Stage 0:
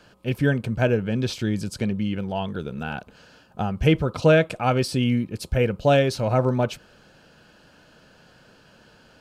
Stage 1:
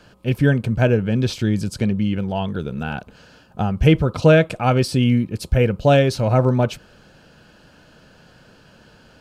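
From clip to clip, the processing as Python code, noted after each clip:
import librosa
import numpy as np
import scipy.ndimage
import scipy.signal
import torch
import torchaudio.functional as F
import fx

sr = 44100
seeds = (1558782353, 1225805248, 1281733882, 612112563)

y = fx.low_shelf(x, sr, hz=200.0, db=5.0)
y = y * librosa.db_to_amplitude(2.5)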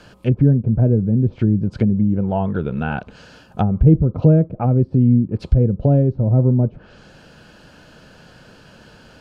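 y = fx.env_lowpass_down(x, sr, base_hz=310.0, full_db=-15.5)
y = y * librosa.db_to_amplitude(4.0)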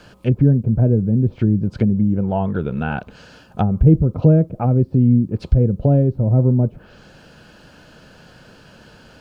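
y = fx.quant_dither(x, sr, seeds[0], bits=12, dither='none')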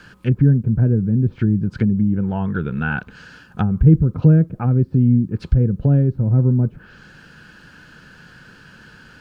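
y = fx.graphic_eq_15(x, sr, hz=(160, 630, 1600), db=(3, -10, 9))
y = y * librosa.db_to_amplitude(-1.5)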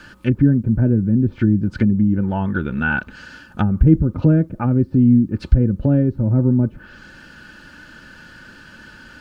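y = x + 0.49 * np.pad(x, (int(3.4 * sr / 1000.0), 0))[:len(x)]
y = y * librosa.db_to_amplitude(2.0)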